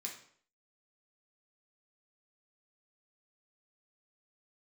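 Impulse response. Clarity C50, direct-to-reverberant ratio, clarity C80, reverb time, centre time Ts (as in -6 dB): 6.5 dB, -1.5 dB, 11.0 dB, 0.55 s, 24 ms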